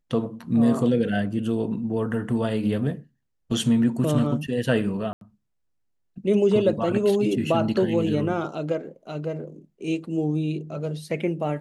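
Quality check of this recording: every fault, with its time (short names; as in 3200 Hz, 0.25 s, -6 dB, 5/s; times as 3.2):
5.13–5.21 gap 82 ms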